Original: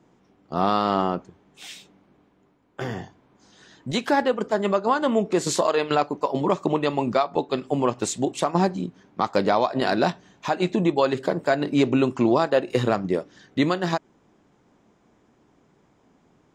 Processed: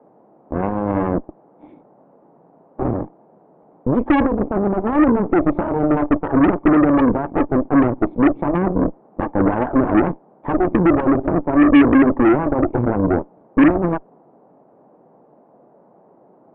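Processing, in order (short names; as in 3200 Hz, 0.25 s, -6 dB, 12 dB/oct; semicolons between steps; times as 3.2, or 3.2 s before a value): sample leveller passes 5; vocal tract filter u; band noise 150–820 Hz -54 dBFS; added harmonics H 8 -14 dB, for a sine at -6.5 dBFS; gain +2.5 dB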